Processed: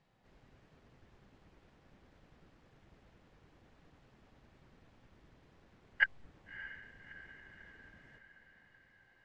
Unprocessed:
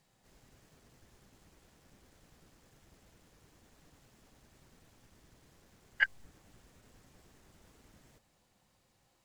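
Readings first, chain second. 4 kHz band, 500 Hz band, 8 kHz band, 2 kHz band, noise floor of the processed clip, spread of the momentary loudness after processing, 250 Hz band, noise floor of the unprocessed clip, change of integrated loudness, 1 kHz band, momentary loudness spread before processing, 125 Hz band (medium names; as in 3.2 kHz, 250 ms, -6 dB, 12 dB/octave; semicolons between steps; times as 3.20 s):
-2.5 dB, 0.0 dB, under -15 dB, 0.0 dB, -68 dBFS, 24 LU, 0.0 dB, -73 dBFS, -7.0 dB, 0.0 dB, 0 LU, +0.5 dB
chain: low-pass 3 kHz 12 dB/octave; echo that smears into a reverb 625 ms, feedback 58%, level -14 dB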